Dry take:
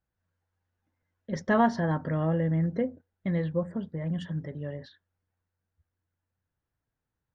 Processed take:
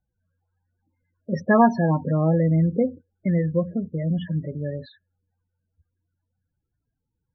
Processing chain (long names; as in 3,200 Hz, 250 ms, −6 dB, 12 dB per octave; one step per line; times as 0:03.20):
spectral peaks only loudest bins 16
0:03.27–0:04.02: dynamic equaliser 990 Hz, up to −3 dB, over −40 dBFS, Q 0.76
level +7 dB